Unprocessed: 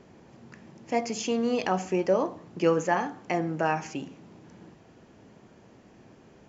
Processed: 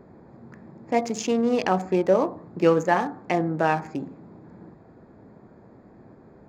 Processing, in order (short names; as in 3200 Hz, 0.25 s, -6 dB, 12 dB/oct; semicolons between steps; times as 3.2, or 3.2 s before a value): Wiener smoothing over 15 samples; gain +4.5 dB